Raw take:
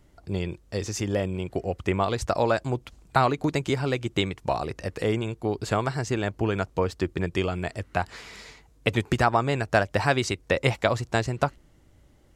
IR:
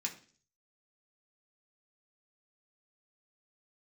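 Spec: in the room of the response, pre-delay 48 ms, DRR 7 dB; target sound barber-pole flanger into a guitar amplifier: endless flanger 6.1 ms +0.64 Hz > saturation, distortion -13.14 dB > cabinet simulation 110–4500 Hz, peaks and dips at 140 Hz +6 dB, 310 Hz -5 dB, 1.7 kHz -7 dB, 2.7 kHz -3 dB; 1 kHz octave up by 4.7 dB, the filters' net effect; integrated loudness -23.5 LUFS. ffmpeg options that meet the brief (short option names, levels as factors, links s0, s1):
-filter_complex "[0:a]equalizer=f=1000:t=o:g=7,asplit=2[s0][s1];[1:a]atrim=start_sample=2205,adelay=48[s2];[s1][s2]afir=irnorm=-1:irlink=0,volume=0.398[s3];[s0][s3]amix=inputs=2:normalize=0,asplit=2[s4][s5];[s5]adelay=6.1,afreqshift=0.64[s6];[s4][s6]amix=inputs=2:normalize=1,asoftclip=threshold=0.158,highpass=110,equalizer=f=140:t=q:w=4:g=6,equalizer=f=310:t=q:w=4:g=-5,equalizer=f=1700:t=q:w=4:g=-7,equalizer=f=2700:t=q:w=4:g=-3,lowpass=f=4500:w=0.5412,lowpass=f=4500:w=1.3066,volume=2"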